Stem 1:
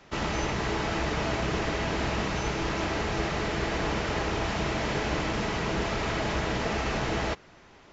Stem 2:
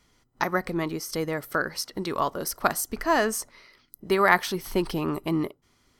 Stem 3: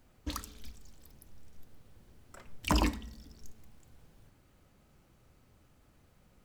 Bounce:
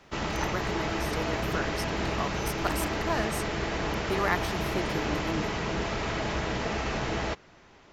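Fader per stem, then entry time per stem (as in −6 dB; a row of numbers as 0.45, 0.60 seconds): −1.5, −8.5, −9.0 decibels; 0.00, 0.00, 0.00 seconds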